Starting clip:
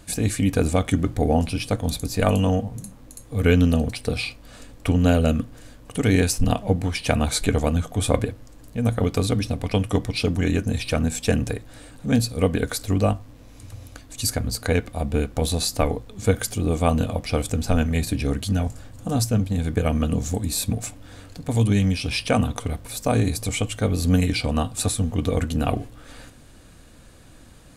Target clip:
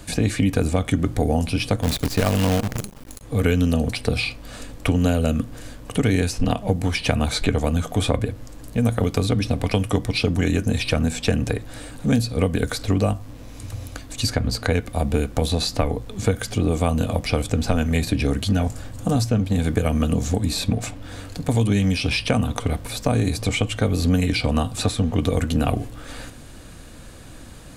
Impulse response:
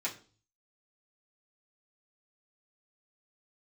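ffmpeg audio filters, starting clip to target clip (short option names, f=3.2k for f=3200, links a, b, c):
-filter_complex "[0:a]acrossover=split=200|5100[a][b][c];[a]acompressor=threshold=-28dB:ratio=4[d];[b]acompressor=threshold=-28dB:ratio=4[e];[c]acompressor=threshold=-46dB:ratio=4[f];[d][e][f]amix=inputs=3:normalize=0,asplit=3[g][h][i];[g]afade=t=out:st=1.82:d=0.02[j];[h]acrusher=bits=6:dc=4:mix=0:aa=0.000001,afade=t=in:st=1.82:d=0.02,afade=t=out:st=3.21:d=0.02[k];[i]afade=t=in:st=3.21:d=0.02[l];[j][k][l]amix=inputs=3:normalize=0,volume=7dB"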